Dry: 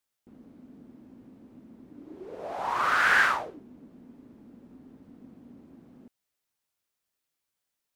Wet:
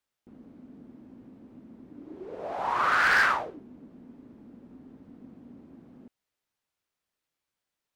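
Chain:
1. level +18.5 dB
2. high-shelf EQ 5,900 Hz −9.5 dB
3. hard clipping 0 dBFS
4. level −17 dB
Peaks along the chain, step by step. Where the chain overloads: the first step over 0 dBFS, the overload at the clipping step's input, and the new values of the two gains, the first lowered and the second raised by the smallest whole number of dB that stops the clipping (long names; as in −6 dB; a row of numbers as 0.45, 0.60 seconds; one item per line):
+7.5, +7.0, 0.0, −17.0 dBFS
step 1, 7.0 dB
step 1 +11.5 dB, step 4 −10 dB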